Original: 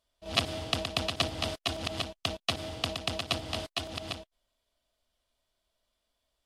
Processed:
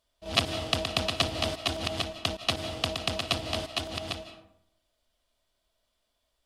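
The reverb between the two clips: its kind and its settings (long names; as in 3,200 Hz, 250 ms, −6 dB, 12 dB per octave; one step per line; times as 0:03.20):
comb and all-pass reverb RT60 0.73 s, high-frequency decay 0.5×, pre-delay 120 ms, DRR 11.5 dB
level +2.5 dB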